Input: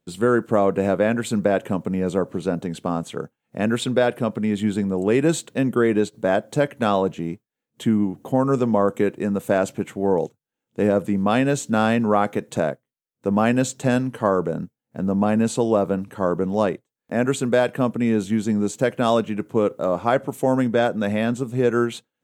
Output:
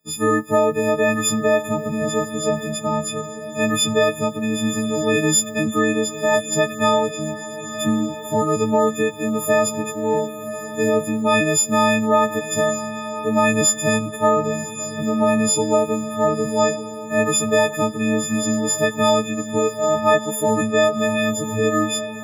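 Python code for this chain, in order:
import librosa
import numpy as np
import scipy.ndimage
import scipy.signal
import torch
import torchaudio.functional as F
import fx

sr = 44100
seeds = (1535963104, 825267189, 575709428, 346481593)

y = fx.freq_snap(x, sr, grid_st=6)
y = fx.echo_diffused(y, sr, ms=1104, feedback_pct=44, wet_db=-11.5)
y = F.gain(torch.from_numpy(y), -1.0).numpy()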